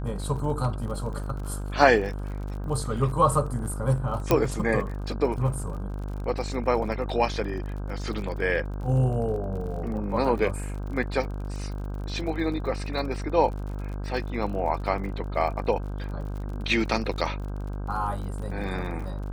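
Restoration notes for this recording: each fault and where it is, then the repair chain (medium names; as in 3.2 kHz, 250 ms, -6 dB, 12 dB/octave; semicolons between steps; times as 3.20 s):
buzz 50 Hz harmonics 32 -32 dBFS
crackle 48 per s -36 dBFS
4.31 s: pop -7 dBFS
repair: de-click; de-hum 50 Hz, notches 32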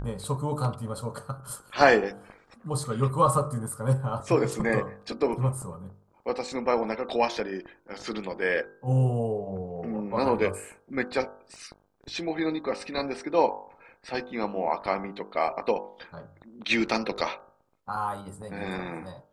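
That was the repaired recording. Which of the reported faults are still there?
nothing left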